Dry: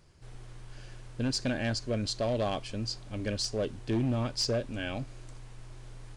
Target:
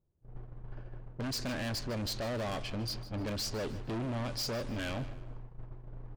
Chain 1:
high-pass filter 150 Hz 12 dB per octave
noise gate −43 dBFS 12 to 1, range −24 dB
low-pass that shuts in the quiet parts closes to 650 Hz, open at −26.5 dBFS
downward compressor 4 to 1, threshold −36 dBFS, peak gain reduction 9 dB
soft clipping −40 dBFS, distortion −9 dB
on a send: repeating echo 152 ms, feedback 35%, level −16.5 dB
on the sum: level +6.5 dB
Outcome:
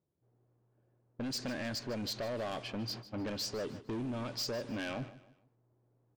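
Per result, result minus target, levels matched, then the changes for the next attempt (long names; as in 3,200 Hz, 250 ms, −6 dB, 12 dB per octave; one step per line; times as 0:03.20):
downward compressor: peak gain reduction +6 dB; 125 Hz band −4.5 dB
change: downward compressor 4 to 1, threshold −28.5 dBFS, peak gain reduction 3.5 dB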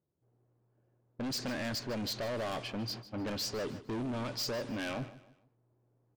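125 Hz band −4.5 dB
remove: high-pass filter 150 Hz 12 dB per octave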